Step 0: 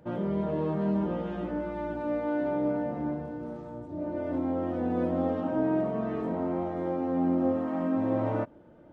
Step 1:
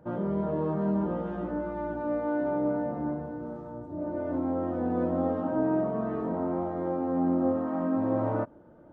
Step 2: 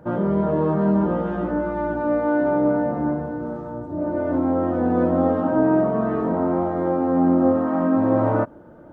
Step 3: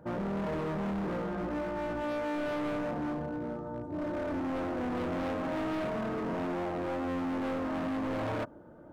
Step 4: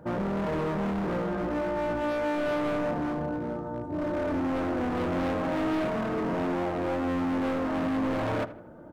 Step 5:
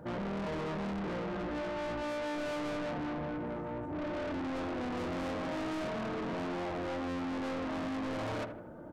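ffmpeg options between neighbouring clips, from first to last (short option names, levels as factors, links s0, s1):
-af "highshelf=f=1800:t=q:w=1.5:g=-7"
-af "equalizer=f=1500:t=o:w=0.77:g=2.5,volume=2.66"
-af "asoftclip=type=hard:threshold=0.0596,volume=0.447"
-filter_complex "[0:a]asplit=2[s0][s1];[s1]adelay=79,lowpass=f=2400:p=1,volume=0.2,asplit=2[s2][s3];[s3]adelay=79,lowpass=f=2400:p=1,volume=0.48,asplit=2[s4][s5];[s5]adelay=79,lowpass=f=2400:p=1,volume=0.48,asplit=2[s6][s7];[s7]adelay=79,lowpass=f=2400:p=1,volume=0.48,asplit=2[s8][s9];[s9]adelay=79,lowpass=f=2400:p=1,volume=0.48[s10];[s0][s2][s4][s6][s8][s10]amix=inputs=6:normalize=0,volume=1.68"
-af "asoftclip=type=tanh:threshold=0.0178"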